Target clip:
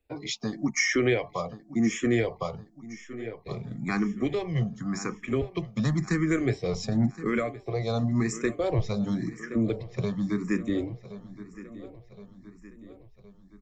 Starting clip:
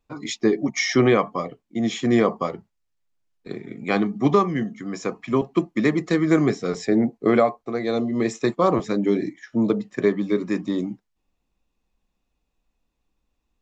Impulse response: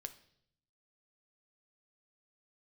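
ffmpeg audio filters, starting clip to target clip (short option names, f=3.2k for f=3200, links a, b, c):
-filter_complex "[0:a]equalizer=f=3.5k:w=1.7:g=-4.5,aecho=1:1:1068|2136|3204|4272:0.119|0.063|0.0334|0.0177,asubboost=boost=7.5:cutoff=100,acrossover=split=120|2300[a][b][c];[b]alimiter=limit=-18dB:level=0:latency=1:release=300[d];[a][d][c]amix=inputs=3:normalize=0,asplit=2[e][f];[f]afreqshift=0.93[g];[e][g]amix=inputs=2:normalize=1,volume=2.5dB"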